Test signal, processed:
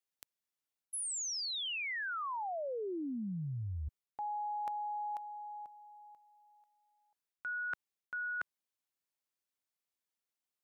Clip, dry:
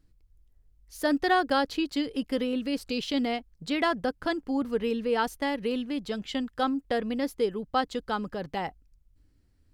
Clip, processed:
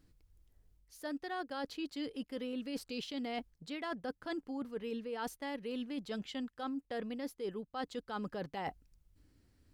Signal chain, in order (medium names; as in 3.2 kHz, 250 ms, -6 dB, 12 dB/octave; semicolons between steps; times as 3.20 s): bass shelf 68 Hz -10.5 dB; reverse; compression 16:1, threshold -39 dBFS; reverse; trim +2.5 dB